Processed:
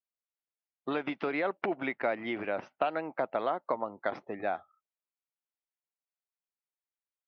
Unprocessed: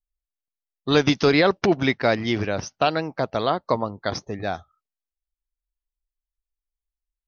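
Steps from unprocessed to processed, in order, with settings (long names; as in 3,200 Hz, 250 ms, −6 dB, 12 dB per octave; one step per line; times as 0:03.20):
downward compressor 5 to 1, threshold −24 dBFS, peak gain reduction 10.5 dB
loudspeaker in its box 370–2,400 Hz, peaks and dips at 440 Hz −5 dB, 1,100 Hz −3 dB, 1,700 Hz −4 dB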